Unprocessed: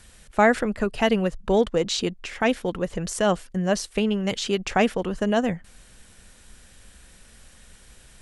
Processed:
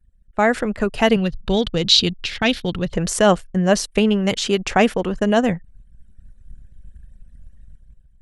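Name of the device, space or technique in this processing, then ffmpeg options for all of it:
voice memo with heavy noise removal: -filter_complex "[0:a]asettb=1/sr,asplit=3[a][b][c];[a]atrim=end=1.164[d];[b]atrim=start=1.16:end=2.93,asetpts=PTS-STARTPTS,afade=t=in:d=0.004:c=qsin,afade=t=out:st=1.766:d=0.004:c=qsin,equalizer=f=125:t=o:w=1:g=6,equalizer=f=250:t=o:w=1:g=-4,equalizer=f=500:t=o:w=1:g=-7,equalizer=f=1k:t=o:w=1:g=-7,equalizer=f=2k:t=o:w=1:g=-4,equalizer=f=4k:t=o:w=1:g=11,equalizer=f=8k:t=o:w=1:g=-9[e];[c]atrim=start=2.926[f];[d][e]acrossfade=d=0.004:c1=hsin:c2=qsin[g];[g][f]acrossfade=d=0.004:c1=qsin:c2=hsin,anlmdn=0.1,dynaudnorm=f=130:g=9:m=13dB,volume=-1dB"

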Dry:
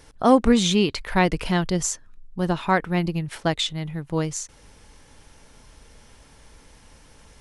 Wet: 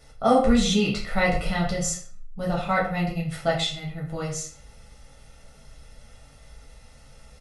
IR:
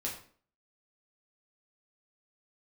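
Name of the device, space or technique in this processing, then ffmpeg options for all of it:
microphone above a desk: -filter_complex "[0:a]aecho=1:1:1.5:0.69[a];[1:a]atrim=start_sample=2205[b];[a][b]afir=irnorm=-1:irlink=0,volume=-4.5dB"

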